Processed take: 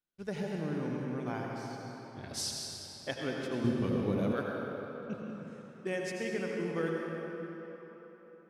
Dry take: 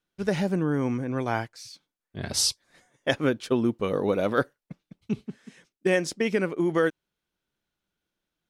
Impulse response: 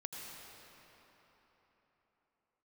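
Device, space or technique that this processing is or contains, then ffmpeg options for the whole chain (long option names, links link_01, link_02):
cathedral: -filter_complex "[1:a]atrim=start_sample=2205[link_01];[0:a][link_01]afir=irnorm=-1:irlink=0,asettb=1/sr,asplit=3[link_02][link_03][link_04];[link_02]atrim=end=3.644[link_05];[link_03]atrim=start=3.64:end=4.33,asetpts=PTS-STARTPTS,afade=type=in:duration=0.004:curve=qsin,afade=type=out:start_time=0.686:duration=0.004:curve=qsin,bass=frequency=250:gain=12,treble=frequency=4000:gain=3[link_06];[link_04]atrim=start=4.326[link_07];[link_05][link_06]acrossfade=duration=0.004:curve1=hsin:curve2=qsin[link_08];[link_08][link_07]acrossfade=duration=0.004:curve1=qsin:curve2=hsin,volume=-8dB"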